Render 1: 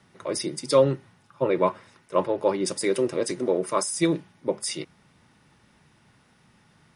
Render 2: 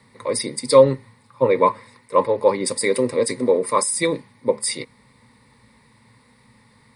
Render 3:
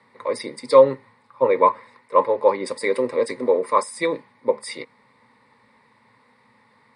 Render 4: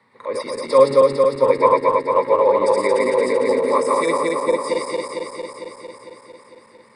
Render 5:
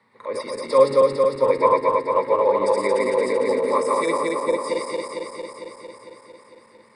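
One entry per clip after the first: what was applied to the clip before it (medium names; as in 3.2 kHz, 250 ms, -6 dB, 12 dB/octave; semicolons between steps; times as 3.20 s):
rippled EQ curve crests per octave 0.96, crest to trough 13 dB; trim +3 dB
band-pass filter 970 Hz, Q 0.58; trim +1.5 dB
backward echo that repeats 113 ms, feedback 84%, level -1 dB; trim -2 dB
reverberation RT60 0.60 s, pre-delay 5 ms, DRR 16.5 dB; trim -3 dB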